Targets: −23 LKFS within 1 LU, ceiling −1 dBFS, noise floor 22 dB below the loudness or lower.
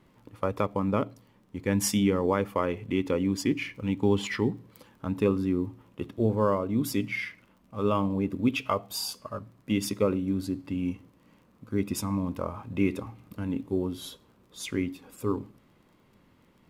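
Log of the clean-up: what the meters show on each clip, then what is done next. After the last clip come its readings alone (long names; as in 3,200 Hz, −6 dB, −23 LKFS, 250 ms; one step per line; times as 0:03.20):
crackle rate 27 per second; integrated loudness −29.5 LKFS; sample peak −12.0 dBFS; target loudness −23.0 LKFS
→ click removal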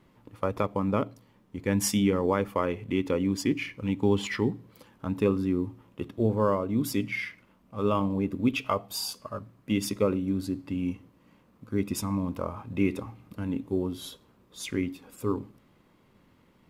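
crackle rate 0.060 per second; integrated loudness −29.5 LKFS; sample peak −12.0 dBFS; target loudness −23.0 LKFS
→ level +6.5 dB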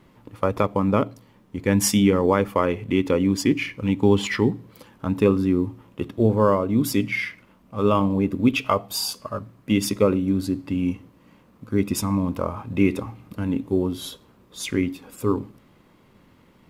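integrated loudness −23.0 LKFS; sample peak −5.5 dBFS; background noise floor −56 dBFS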